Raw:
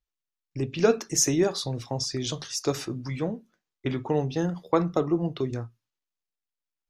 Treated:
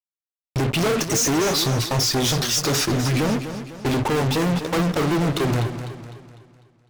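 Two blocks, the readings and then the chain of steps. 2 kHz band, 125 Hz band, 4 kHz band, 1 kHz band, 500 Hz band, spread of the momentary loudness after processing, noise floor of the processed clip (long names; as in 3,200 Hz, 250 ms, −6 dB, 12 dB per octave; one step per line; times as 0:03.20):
+11.5 dB, +9.0 dB, +10.5 dB, +8.0 dB, +3.0 dB, 10 LU, below −85 dBFS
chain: fuzz pedal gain 45 dB, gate −45 dBFS
feedback echo with a swinging delay time 251 ms, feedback 44%, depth 80 cents, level −10 dB
level −6 dB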